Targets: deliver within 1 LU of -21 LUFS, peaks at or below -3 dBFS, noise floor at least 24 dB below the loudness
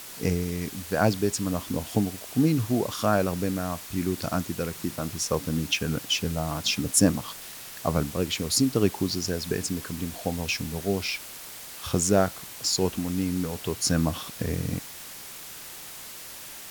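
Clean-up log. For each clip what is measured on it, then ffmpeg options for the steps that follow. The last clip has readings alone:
noise floor -42 dBFS; noise floor target -51 dBFS; loudness -27.0 LUFS; peak -6.5 dBFS; loudness target -21.0 LUFS
-> -af "afftdn=nr=9:nf=-42"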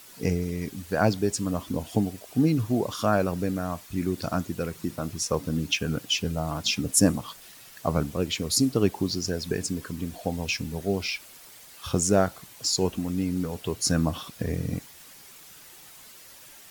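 noise floor -49 dBFS; noise floor target -51 dBFS
-> -af "afftdn=nr=6:nf=-49"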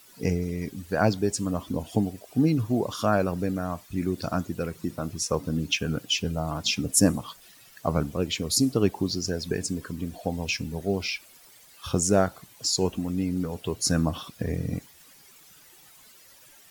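noise floor -54 dBFS; loudness -27.5 LUFS; peak -7.0 dBFS; loudness target -21.0 LUFS
-> -af "volume=6.5dB,alimiter=limit=-3dB:level=0:latency=1"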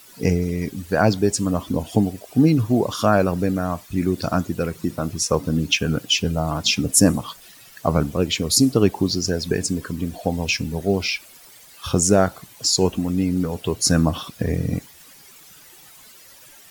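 loudness -21.0 LUFS; peak -3.0 dBFS; noise floor -47 dBFS

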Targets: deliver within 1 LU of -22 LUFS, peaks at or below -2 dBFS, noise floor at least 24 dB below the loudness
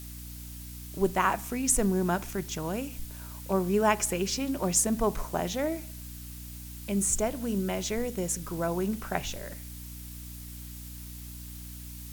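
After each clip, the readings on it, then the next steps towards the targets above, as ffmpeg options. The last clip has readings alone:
hum 60 Hz; harmonics up to 300 Hz; hum level -41 dBFS; noise floor -42 dBFS; noise floor target -53 dBFS; loudness -29.0 LUFS; peak -10.5 dBFS; loudness target -22.0 LUFS
-> -af "bandreject=f=60:t=h:w=4,bandreject=f=120:t=h:w=4,bandreject=f=180:t=h:w=4,bandreject=f=240:t=h:w=4,bandreject=f=300:t=h:w=4"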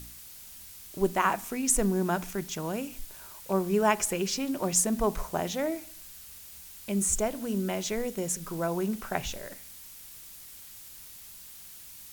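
hum none; noise floor -48 dBFS; noise floor target -53 dBFS
-> -af "afftdn=nr=6:nf=-48"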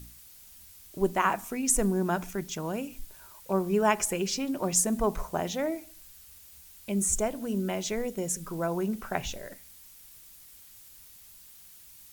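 noise floor -52 dBFS; noise floor target -53 dBFS
-> -af "afftdn=nr=6:nf=-52"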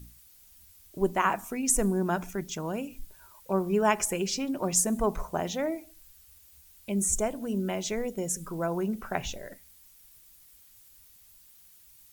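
noise floor -57 dBFS; loudness -29.0 LUFS; peak -10.5 dBFS; loudness target -22.0 LUFS
-> -af "volume=7dB"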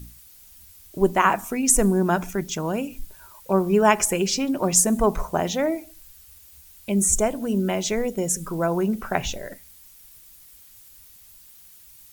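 loudness -22.0 LUFS; peak -3.5 dBFS; noise floor -50 dBFS

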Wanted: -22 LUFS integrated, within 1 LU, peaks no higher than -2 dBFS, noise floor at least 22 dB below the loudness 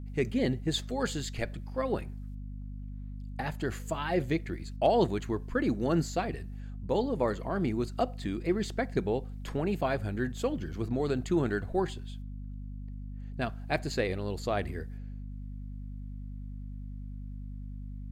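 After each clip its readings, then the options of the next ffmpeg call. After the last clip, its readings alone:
hum 50 Hz; harmonics up to 250 Hz; hum level -37 dBFS; loudness -32.0 LUFS; peak -13.5 dBFS; loudness target -22.0 LUFS
-> -af "bandreject=f=50:t=h:w=4,bandreject=f=100:t=h:w=4,bandreject=f=150:t=h:w=4,bandreject=f=200:t=h:w=4,bandreject=f=250:t=h:w=4"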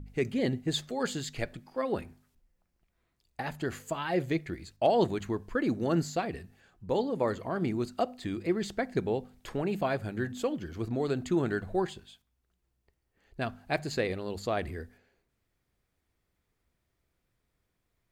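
hum none; loudness -32.0 LUFS; peak -14.0 dBFS; loudness target -22.0 LUFS
-> -af "volume=10dB"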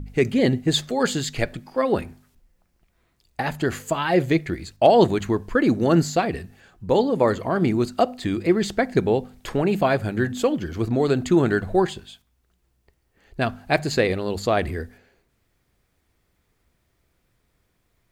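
loudness -22.0 LUFS; peak -4.0 dBFS; noise floor -69 dBFS

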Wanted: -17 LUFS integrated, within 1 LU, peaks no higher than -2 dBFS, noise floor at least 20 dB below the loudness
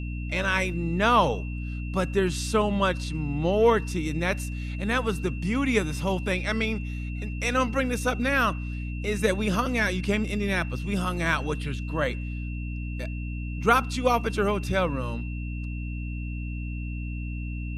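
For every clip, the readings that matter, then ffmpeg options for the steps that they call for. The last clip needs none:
hum 60 Hz; harmonics up to 300 Hz; hum level -30 dBFS; steady tone 2700 Hz; tone level -43 dBFS; loudness -27.0 LUFS; peak -7.0 dBFS; loudness target -17.0 LUFS
-> -af "bandreject=f=60:t=h:w=6,bandreject=f=120:t=h:w=6,bandreject=f=180:t=h:w=6,bandreject=f=240:t=h:w=6,bandreject=f=300:t=h:w=6"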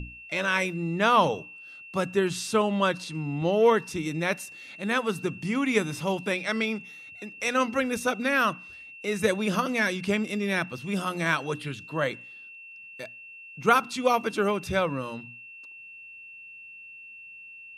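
hum none; steady tone 2700 Hz; tone level -43 dBFS
-> -af "bandreject=f=2.7k:w=30"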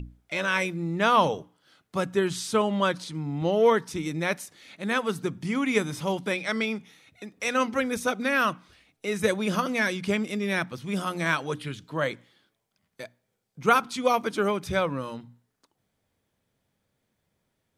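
steady tone none; loudness -27.0 LUFS; peak -7.0 dBFS; loudness target -17.0 LUFS
-> -af "volume=10dB,alimiter=limit=-2dB:level=0:latency=1"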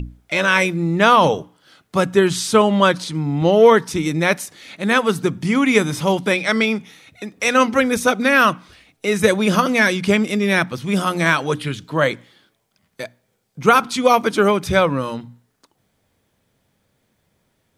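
loudness -17.0 LUFS; peak -2.0 dBFS; noise floor -68 dBFS

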